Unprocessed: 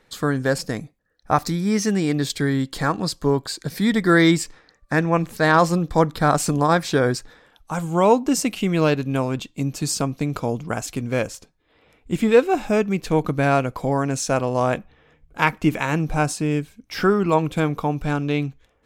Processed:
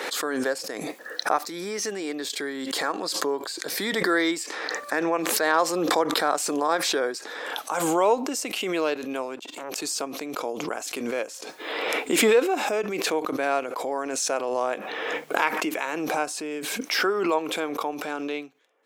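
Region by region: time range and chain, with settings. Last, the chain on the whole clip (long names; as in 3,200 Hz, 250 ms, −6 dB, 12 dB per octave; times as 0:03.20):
0:09.39–0:09.82: low-shelf EQ 120 Hz −5.5 dB + downward compressor 5 to 1, threshold −39 dBFS + saturating transformer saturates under 1,000 Hz
whole clip: high-pass filter 340 Hz 24 dB per octave; background raised ahead of every attack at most 24 dB per second; level −5.5 dB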